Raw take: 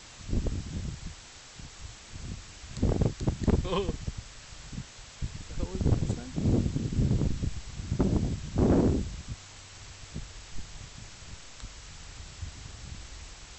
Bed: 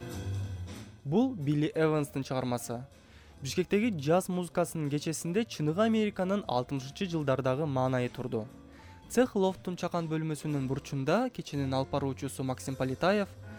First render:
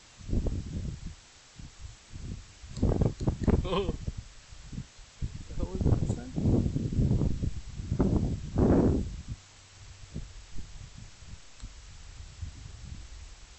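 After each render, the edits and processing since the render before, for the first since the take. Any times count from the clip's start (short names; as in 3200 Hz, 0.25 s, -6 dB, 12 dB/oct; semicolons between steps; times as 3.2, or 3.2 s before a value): noise print and reduce 6 dB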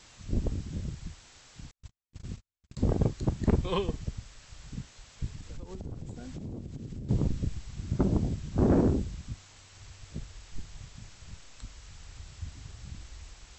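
1.71–2.77 gate -41 dBFS, range -48 dB; 5.31–7.09 compressor 8:1, threshold -36 dBFS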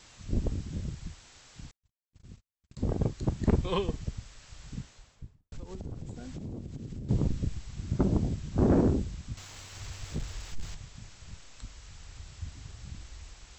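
1.77–3.43 fade in; 4.75–5.52 studio fade out; 9.37–10.75 sample leveller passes 2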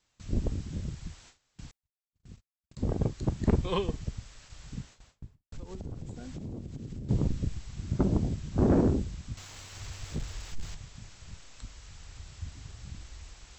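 gate with hold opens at -42 dBFS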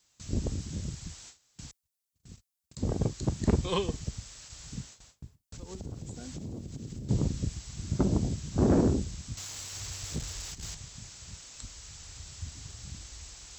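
HPF 44 Hz; tone controls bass 0 dB, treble +11 dB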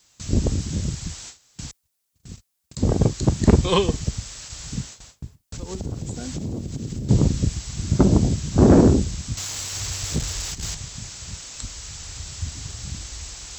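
gain +10.5 dB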